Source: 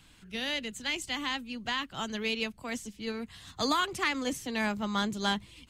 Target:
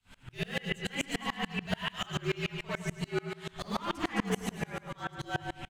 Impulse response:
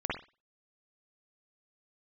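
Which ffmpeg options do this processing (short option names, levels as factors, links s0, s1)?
-filter_complex "[0:a]asettb=1/sr,asplit=3[s0][s1][s2];[s0]atrim=end=1.704[s3];[s1]atrim=start=1.7:end=2.11,asetpts=PTS-STARTPTS,afade=t=in:d=0.004:c=qsin,afade=t=out:st=0.406:d=0.004:c=qsin,tiltshelf=f=1300:g=-7[s4];[s2]atrim=start=2.106[s5];[s3][s4]acrossfade=d=0.004:c1=hsin:c2=qsin[s6];[s6][s5]acrossfade=d=0.004:c1=qsin:c2=hsin,asettb=1/sr,asplit=3[s7][s8][s9];[s7]atrim=end=2.974[s10];[s8]atrim=start=2.97:end=3.48,asetpts=PTS-STARTPTS,afade=t=in:d=0.004:c=qsin,afade=t=out:st=0.506:d=0.004:c=qsin,highpass=320[s11];[s9]atrim=start=3.476[s12];[s10][s11]acrossfade=d=0.004:c1=hsin:c2=qsin[s13];[s13][s12]acrossfade=d=0.004:c1=qsin:c2=hsin,asettb=1/sr,asplit=3[s14][s15][s16];[s14]atrim=end=4.514[s17];[s15]atrim=start=4.51:end=5.19,asetpts=PTS-STARTPTS,afade=t=in:d=0.004:c=qsin,afade=t=out:st=0.676:d=0.004:c=qsin,agate=range=0.224:threshold=0.0501:ratio=16:detection=peak[s18];[s16]atrim=start=5.186[s19];[s17][s18]acrossfade=d=0.004:c1=hsin:c2=qsin[s20];[s20][s19]acrossfade=d=0.004:c1=qsin:c2=hsin,alimiter=level_in=1.41:limit=0.0631:level=0:latency=1:release=29,volume=0.708,asoftclip=type=hard:threshold=0.02,afreqshift=-63,aecho=1:1:107|214|321|428|535|642|749|856:0.562|0.337|0.202|0.121|0.0729|0.0437|0.0262|0.0157[s21];[1:a]atrim=start_sample=2205,atrim=end_sample=3528[s22];[s21][s22]afir=irnorm=-1:irlink=0,aeval=exprs='val(0)*pow(10,-29*if(lt(mod(-6.9*n/s,1),2*abs(-6.9)/1000),1-mod(-6.9*n/s,1)/(2*abs(-6.9)/1000),(mod(-6.9*n/s,1)-2*abs(-6.9)/1000)/(1-2*abs(-6.9)/1000))/20)':c=same,volume=1.88"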